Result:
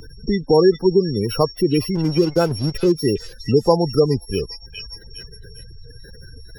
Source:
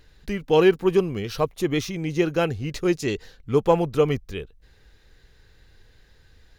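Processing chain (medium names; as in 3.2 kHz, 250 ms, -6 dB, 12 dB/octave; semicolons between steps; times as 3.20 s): sorted samples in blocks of 8 samples; spectral gate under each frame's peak -20 dB strong; in parallel at +2 dB: compression, threshold -31 dBFS, peak gain reduction 17.5 dB; 1.95–2.92 s: on the sum: hysteresis with a dead band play -26 dBFS; on a send: repeats whose band climbs or falls 408 ms, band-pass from 3.5 kHz, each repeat 0.7 oct, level -1 dB; on the sum: three bands compressed up and down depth 40%; trim +3 dB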